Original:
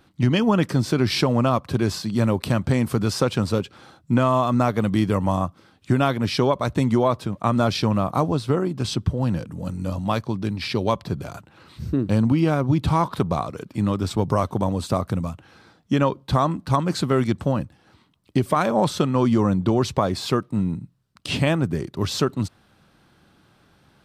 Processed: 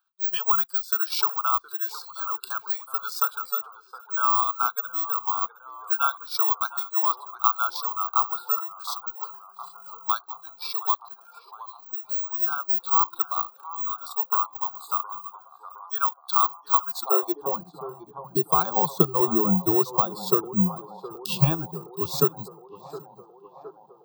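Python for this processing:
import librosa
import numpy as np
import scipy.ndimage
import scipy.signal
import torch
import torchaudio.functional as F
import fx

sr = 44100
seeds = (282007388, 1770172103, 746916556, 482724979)

p1 = fx.transient(x, sr, attack_db=3, sustain_db=-8)
p2 = fx.fixed_phaser(p1, sr, hz=400.0, stages=8)
p3 = p2 + fx.echo_single(p2, sr, ms=782, db=-17.5, dry=0)
p4 = (np.kron(scipy.signal.resample_poly(p3, 1, 2), np.eye(2)[0]) * 2)[:len(p3)]
p5 = fx.noise_reduce_blind(p4, sr, reduce_db=16)
p6 = fx.echo_banded(p5, sr, ms=715, feedback_pct=78, hz=680.0, wet_db=-13.0)
p7 = fx.filter_sweep_highpass(p6, sr, from_hz=1400.0, to_hz=150.0, start_s=16.81, end_s=17.75, q=2.5)
y = p7 * librosa.db_to_amplitude(-1.0)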